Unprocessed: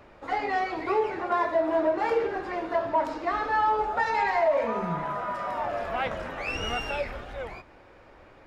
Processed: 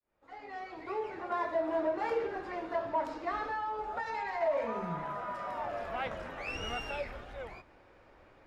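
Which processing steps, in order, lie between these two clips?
opening faded in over 1.54 s; 3.44–4.41 compressor, threshold -26 dBFS, peak gain reduction 6 dB; gain -7 dB

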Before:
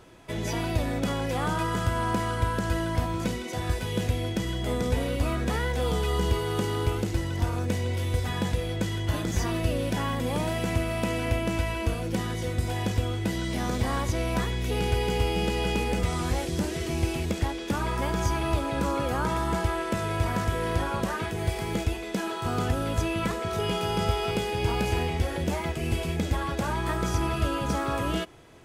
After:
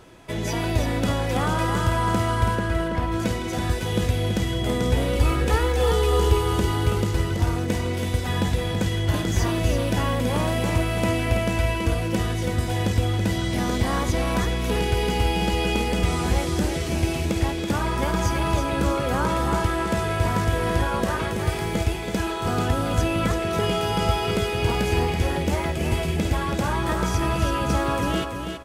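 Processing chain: 2.55–3.12 tone controls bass -3 dB, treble -13 dB; 5.15–6.54 comb 2.3 ms, depth 65%; feedback echo 0.329 s, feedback 28%, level -6.5 dB; gain +3.5 dB

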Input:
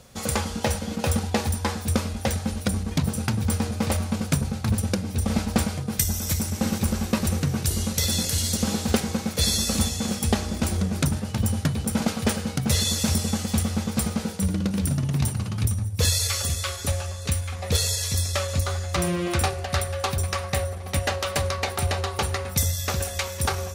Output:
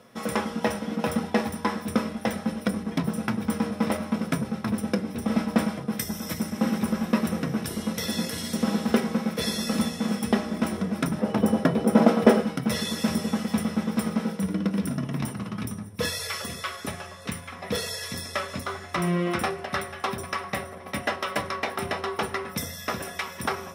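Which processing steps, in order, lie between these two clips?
11.19–12.42 bell 510 Hz +11 dB 2.2 oct; reverb RT60 0.30 s, pre-delay 3 ms, DRR 5.5 dB; gain -9 dB

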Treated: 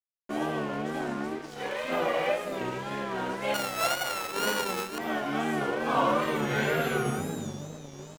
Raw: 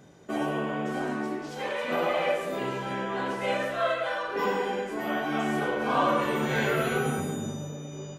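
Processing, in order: 3.54–4.98 sample sorter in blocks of 32 samples; wow and flutter 91 cents; crossover distortion -43 dBFS

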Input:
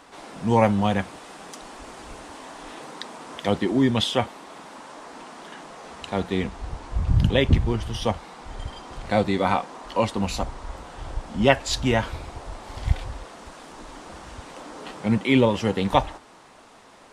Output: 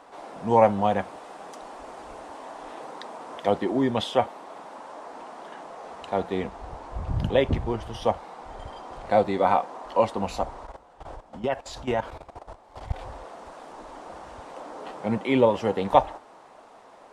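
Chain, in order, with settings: bell 680 Hz +12.5 dB 2.1 oct; 10.65–13 level quantiser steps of 15 dB; gain -9 dB

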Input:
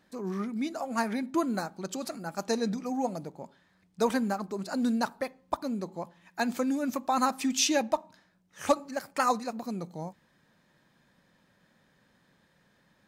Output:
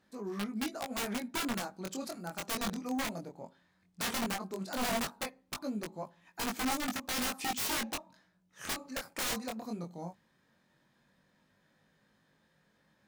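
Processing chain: added harmonics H 5 -27 dB, 7 -25 dB, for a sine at -12 dBFS; wrapped overs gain 25 dB; chorus 0.16 Hz, delay 19 ms, depth 4.4 ms

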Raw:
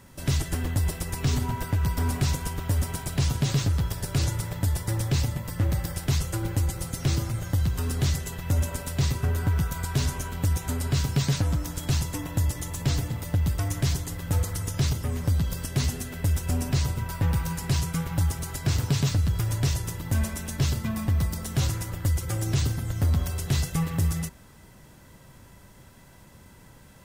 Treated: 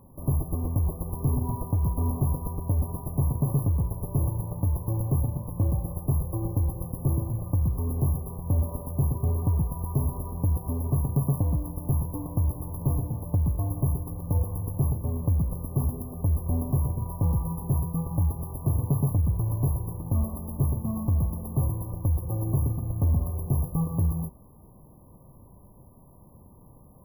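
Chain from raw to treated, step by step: sample sorter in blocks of 16 samples; brick-wall FIR band-stop 1200–11000 Hz

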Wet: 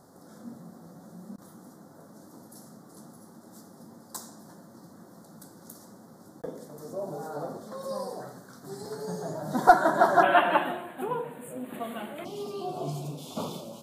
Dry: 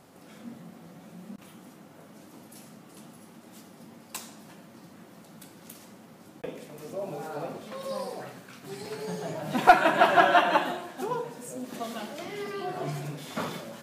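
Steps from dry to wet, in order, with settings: Butterworth band-stop 2600 Hz, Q 0.9, from 10.22 s 5500 Hz, from 12.24 s 1800 Hz

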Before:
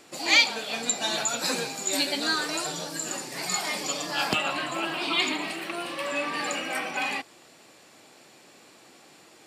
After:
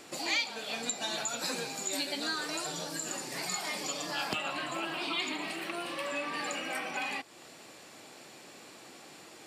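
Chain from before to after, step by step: compressor 2:1, threshold -41 dBFS, peak gain reduction 14.5 dB; gain +2 dB

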